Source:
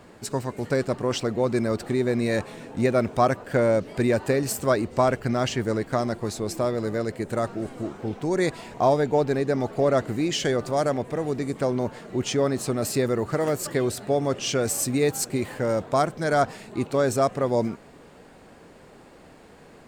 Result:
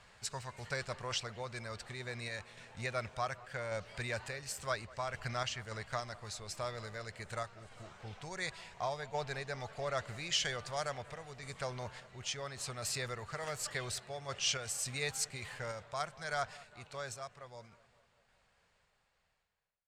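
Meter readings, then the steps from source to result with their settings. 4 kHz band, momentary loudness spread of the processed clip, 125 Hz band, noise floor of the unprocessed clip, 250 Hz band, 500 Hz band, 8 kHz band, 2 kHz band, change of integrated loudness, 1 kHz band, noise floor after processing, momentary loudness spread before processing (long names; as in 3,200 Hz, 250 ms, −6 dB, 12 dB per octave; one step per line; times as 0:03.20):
−5.0 dB, 10 LU, −15.5 dB, −50 dBFS, −26.5 dB, −19.5 dB, −8.0 dB, −7.5 dB, −14.5 dB, −13.5 dB, −75 dBFS, 7 LU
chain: fade-out on the ending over 4.94 s
guitar amp tone stack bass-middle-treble 10-0-10
sample-and-hold tremolo
high-frequency loss of the air 60 metres
delay with a low-pass on its return 197 ms, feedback 62%, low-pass 2,300 Hz, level −20.5 dB
level +1 dB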